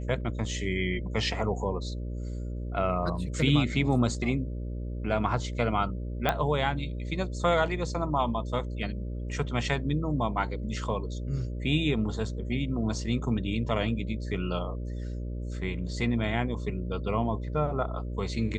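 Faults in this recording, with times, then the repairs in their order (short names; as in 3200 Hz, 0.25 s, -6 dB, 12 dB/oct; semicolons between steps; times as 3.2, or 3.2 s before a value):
buzz 60 Hz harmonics 10 -34 dBFS
6.29 pop -12 dBFS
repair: de-click; de-hum 60 Hz, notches 10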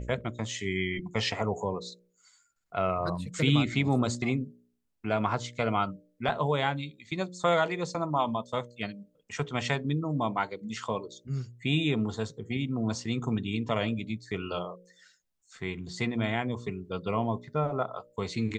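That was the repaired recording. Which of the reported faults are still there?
6.29 pop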